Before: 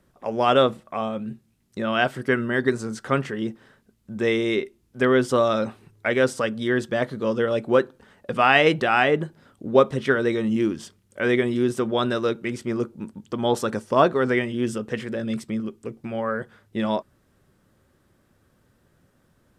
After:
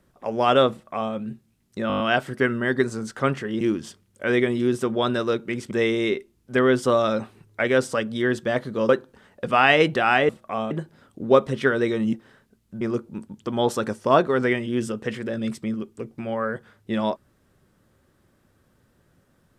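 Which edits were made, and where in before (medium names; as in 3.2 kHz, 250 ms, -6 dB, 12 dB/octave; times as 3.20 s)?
0.72–1.14 s: copy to 9.15 s
1.88 s: stutter 0.02 s, 7 plays
3.49–4.17 s: swap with 10.57–12.67 s
7.35–7.75 s: delete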